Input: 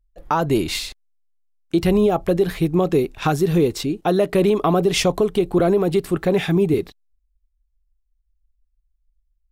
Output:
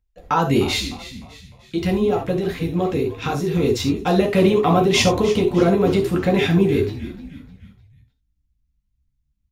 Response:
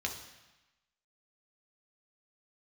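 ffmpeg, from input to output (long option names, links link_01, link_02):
-filter_complex "[0:a]asettb=1/sr,asplit=3[link_01][link_02][link_03];[link_01]atrim=end=0.804[link_04];[link_02]atrim=start=0.8:end=3.63,asetpts=PTS-STARTPTS,afade=type=in:duration=0.004:curve=qsin,afade=type=out:start_time=2.826:duration=0.004:curve=qsin,flanger=delay=5:depth=7.4:regen=-74:speed=1.3:shape=triangular[link_05];[link_03]atrim=start=3.626[link_06];[link_04][link_05]acrossfade=duration=0.004:curve1=hsin:curve2=qsin[link_07];[link_07][link_06]acrossfade=duration=0.004:curve1=qsin:curve2=hsin,asplit=5[link_08][link_09][link_10][link_11][link_12];[link_09]adelay=303,afreqshift=-72,volume=-15dB[link_13];[link_10]adelay=606,afreqshift=-144,volume=-21.9dB[link_14];[link_11]adelay=909,afreqshift=-216,volume=-28.9dB[link_15];[link_12]adelay=1212,afreqshift=-288,volume=-35.8dB[link_16];[link_08][link_13][link_14][link_15][link_16]amix=inputs=5:normalize=0[link_17];[1:a]atrim=start_sample=2205,afade=type=out:start_time=0.14:duration=0.01,atrim=end_sample=6615[link_18];[link_17][link_18]afir=irnorm=-1:irlink=0"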